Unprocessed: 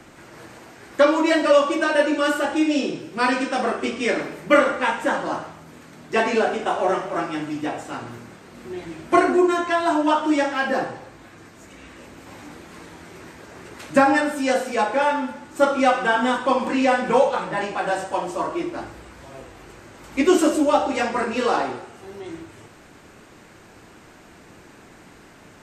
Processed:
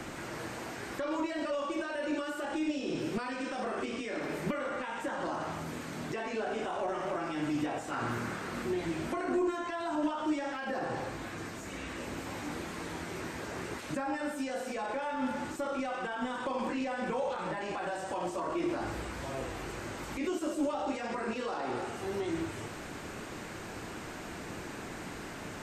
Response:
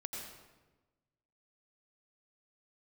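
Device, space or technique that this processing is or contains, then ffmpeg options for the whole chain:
de-esser from a sidechain: -filter_complex "[0:a]asplit=2[link_01][link_02];[link_02]highpass=frequency=5700:poles=1,apad=whole_len=1130219[link_03];[link_01][link_03]sidechaincompress=threshold=-52dB:ratio=16:attack=0.67:release=23,asettb=1/sr,asplit=3[link_04][link_05][link_06];[link_04]atrim=end=7.914[link_07];[link_05]atrim=start=7.91:end=8.63,asetpts=PTS-STARTPTS,afade=type=in:duration=0.004:curve=qsin,afade=type=out:start_time=0.716:duration=0.004:curve=qsin,equalizer=frequency=1400:width_type=o:width=0.98:gain=6[link_08];[link_06]atrim=start=8.626[link_09];[link_07][link_08]acrossfade=duration=0.004:curve1=hsin:curve2=qsin[link_10];[link_10][link_09]acrossfade=duration=0.004:curve1=qsin:curve2=hsin,volume=5.5dB"

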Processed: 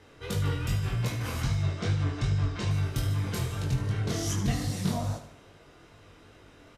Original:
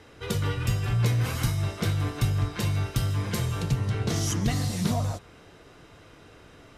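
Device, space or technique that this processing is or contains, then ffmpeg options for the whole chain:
double-tracked vocal: -filter_complex "[0:a]asettb=1/sr,asplit=3[link_01][link_02][link_03];[link_01]atrim=end=1.414[link_04];[link_02]atrim=start=1.41:end=2.71,asetpts=PTS-STARTPTS,afade=type=in:duration=0.004:curve=qsin,afade=type=out:start_time=1.296:duration=0.004:curve=qsin,lowpass=frequency=7300:width=0.5412,lowpass=frequency=7300:width=1.3066[link_05];[link_03]atrim=start=2.706[link_06];[link_04][link_05]acrossfade=duration=0.004:curve1=hsin:curve2=qsin[link_07];[link_07][link_06]acrossfade=duration=0.004:curve1=qsin:curve2=hsin,asplit=2[link_08][link_09];[link_09]adelay=21,volume=-10.5dB[link_10];[link_08][link_10]amix=inputs=2:normalize=0,flanger=delay=19:depth=5.3:speed=2.5,aecho=1:1:75|150|225|300|375:0.282|0.138|0.0677|0.0332|0.0162,volume=-1dB"

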